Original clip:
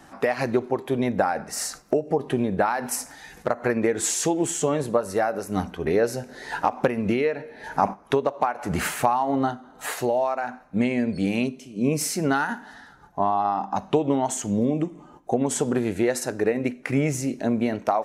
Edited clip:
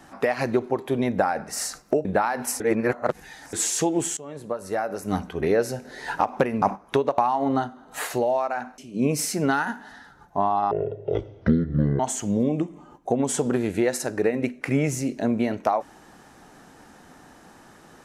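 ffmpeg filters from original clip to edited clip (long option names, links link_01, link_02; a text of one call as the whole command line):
ffmpeg -i in.wav -filter_complex "[0:a]asplit=10[link_01][link_02][link_03][link_04][link_05][link_06][link_07][link_08][link_09][link_10];[link_01]atrim=end=2.052[link_11];[link_02]atrim=start=2.488:end=3.042[link_12];[link_03]atrim=start=3.038:end=3.972,asetpts=PTS-STARTPTS,areverse[link_13];[link_04]atrim=start=3.968:end=4.61,asetpts=PTS-STARTPTS,afade=type=out:start_time=0.638:duration=0.004:curve=hsin:silence=0.0794328[link_14];[link_05]atrim=start=4.61:end=7.062,asetpts=PTS-STARTPTS,afade=type=in:duration=0.94:silence=0.0794328[link_15];[link_06]atrim=start=7.798:end=8.362[link_16];[link_07]atrim=start=9.048:end=10.652[link_17];[link_08]atrim=start=11.598:end=13.534[link_18];[link_09]atrim=start=13.53:end=14.21,asetpts=PTS-STARTPTS,asetrate=23373,aresample=44100,atrim=end_sample=56581,asetpts=PTS-STARTPTS[link_19];[link_10]atrim=start=14.206[link_20];[link_11][link_12]acrossfade=duration=0.004:curve1=hsin:curve2=hsin[link_21];[link_21][link_13]acrossfade=duration=0.004:curve1=hsin:curve2=hsin[link_22];[link_14][link_15]concat=n=2:v=0:a=1[link_23];[link_22][link_23]acrossfade=duration=0.004:curve1=hsin:curve2=hsin[link_24];[link_24][link_16]acrossfade=duration=0.004:curve1=hsin:curve2=hsin[link_25];[link_25][link_17]acrossfade=duration=0.004:curve1=hsin:curve2=hsin[link_26];[link_26][link_18]acrossfade=duration=0.004:curve1=hsin:curve2=hsin[link_27];[link_27][link_19]acrossfade=duration=0.004:curve1=hsin:curve2=hsin[link_28];[link_28][link_20]acrossfade=duration=0.004:curve1=hsin:curve2=hsin" out.wav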